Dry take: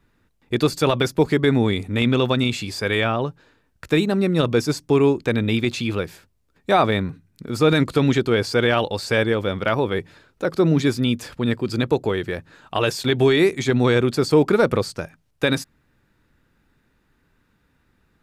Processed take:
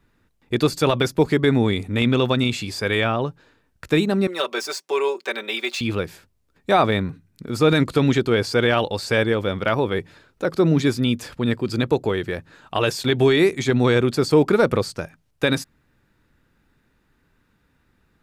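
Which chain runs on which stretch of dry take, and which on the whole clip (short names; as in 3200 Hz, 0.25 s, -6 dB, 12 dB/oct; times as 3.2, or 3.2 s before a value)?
4.27–5.81 median filter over 3 samples + Bessel high-pass 630 Hz, order 4 + comb 5.2 ms, depth 79%
whole clip: dry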